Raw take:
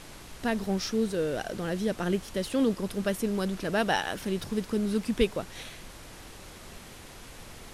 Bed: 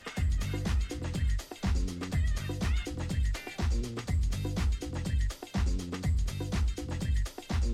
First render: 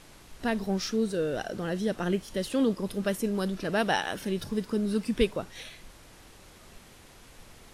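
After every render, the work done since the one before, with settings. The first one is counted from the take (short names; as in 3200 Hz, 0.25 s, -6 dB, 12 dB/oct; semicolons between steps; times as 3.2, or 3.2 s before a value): noise print and reduce 6 dB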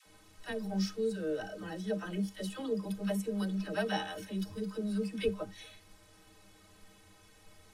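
metallic resonator 93 Hz, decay 0.21 s, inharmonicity 0.03; dispersion lows, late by 68 ms, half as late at 520 Hz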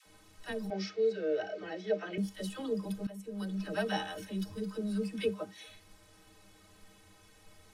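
0.7–2.18 speaker cabinet 170–5500 Hz, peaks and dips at 170 Hz -7 dB, 250 Hz -10 dB, 400 Hz +8 dB, 660 Hz +7 dB, 980 Hz -5 dB, 2200 Hz +9 dB; 3.07–3.68 fade in, from -18 dB; 5.21–5.67 HPF 110 Hz -> 240 Hz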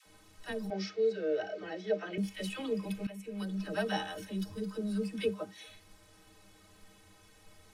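2.23–3.43 bell 2400 Hz +13.5 dB 0.54 oct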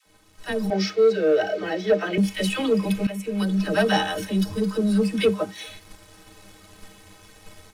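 sample leveller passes 1; AGC gain up to 10 dB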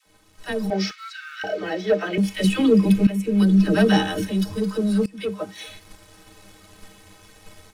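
0.91–1.44 steep high-pass 1200 Hz 72 dB/oct; 2.44–4.31 resonant low shelf 450 Hz +6.5 dB, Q 1.5; 5.06–5.63 fade in, from -22 dB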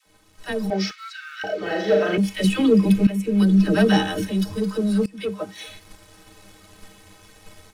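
1.58–2.17 flutter echo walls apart 6.8 m, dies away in 0.74 s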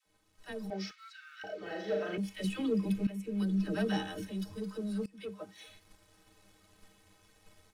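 gain -15 dB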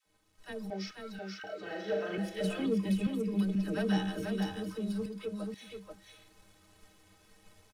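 echo 0.485 s -4 dB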